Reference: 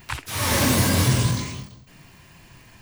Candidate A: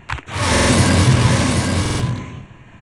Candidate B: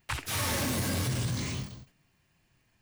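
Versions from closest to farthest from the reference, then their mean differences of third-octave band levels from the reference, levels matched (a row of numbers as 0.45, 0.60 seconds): B, A; 6.0, 8.5 decibels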